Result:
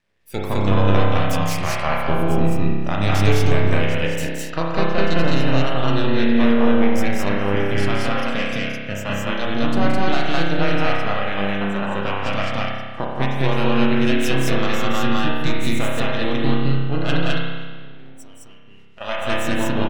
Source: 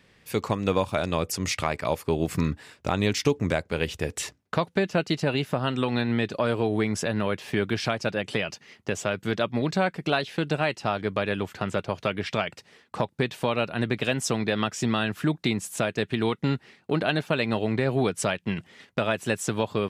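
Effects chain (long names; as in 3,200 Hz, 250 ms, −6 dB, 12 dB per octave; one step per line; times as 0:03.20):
half-wave rectification
0:17.17–0:19.01: downward compressor 16 to 1, threshold −37 dBFS, peak gain reduction 18.5 dB
noise reduction from a noise print of the clip's start 14 dB
on a send: loudspeakers that aren't time-aligned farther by 59 metres −7 dB, 72 metres 0 dB
on the sum: spring reverb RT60 1.5 s, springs 30 ms, chirp 75 ms, DRR −2.5 dB
level +1.5 dB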